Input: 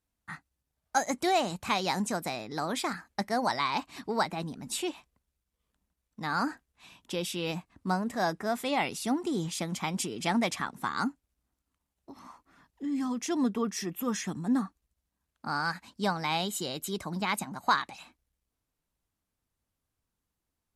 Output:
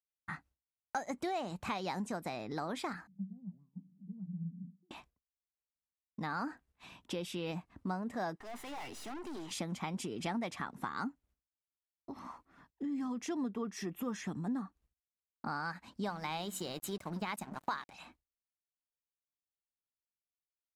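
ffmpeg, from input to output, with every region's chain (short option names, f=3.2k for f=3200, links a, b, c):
-filter_complex "[0:a]asettb=1/sr,asplit=3[a][b][c];[a]atrim=end=3.074[d];[b]atrim=start=3.07:end=4.91,asetpts=PTS-STARTPTS,afade=t=in:d=0.004:c=qsin,afade=t=out:st=1.836:d=0.004:c=qsin,aeval=exprs='val(0)+0.5*0.0106*sgn(val(0))':c=same,asuperpass=centerf=180:order=4:qfactor=6.3[e];[c]atrim=start=4.906[f];[d][e]acrossfade=d=0.004:c1=hsin:c2=qsin[g];[g][f]acrossfade=d=0.004:c1=qsin:c2=hsin,asettb=1/sr,asplit=3[h][i][j];[h]atrim=end=8.364[k];[i]atrim=start=8.36:end=9.51,asetpts=PTS-STARTPTS,afade=t=in:d=0.004:c=qsin,afade=t=out:st=1.146:d=0.004:c=qsin,highpass=f=290:w=0.5412,highpass=f=290:w=1.3066,aecho=1:1:1:0.51,atrim=end_sample=50715,aeval=exprs='(tanh(158*val(0)+0.55)-tanh(0.55))/158':c=same[l];[j]atrim=start=9.506[m];[k][l]acrossfade=d=0.004:c1=hsin:c2=qsin[n];[n][m]acrossfade=d=0.004:c1=qsin:c2=hsin,asettb=1/sr,asplit=3[o][p][q];[o]atrim=end=16.064[r];[p]atrim=start=16.06:end=17.94,asetpts=PTS-STARTPTS,afade=t=in:d=0.004:c=qsin,afade=t=out:st=1.876:d=0.004:c=qsin,highshelf=f=7.1k:g=7.5,bandreject=f=46.99:t=h:w=4,bandreject=f=93.98:t=h:w=4,bandreject=f=140.97:t=h:w=4,bandreject=f=187.96:t=h:w=4,bandreject=f=234.95:t=h:w=4,bandreject=f=281.94:t=h:w=4,bandreject=f=328.93:t=h:w=4,aeval=exprs='sgn(val(0))*max(abs(val(0))-0.00531,0)':c=same[s];[q]atrim=start=17.936[t];[r][s]acrossfade=d=0.004:c1=hsin:c2=qsin[u];[u][t]acrossfade=d=0.004:c1=qsin:c2=hsin,agate=range=-33dB:threshold=-57dB:ratio=3:detection=peak,highshelf=f=3.4k:g=-10,acompressor=threshold=-41dB:ratio=3,volume=3dB"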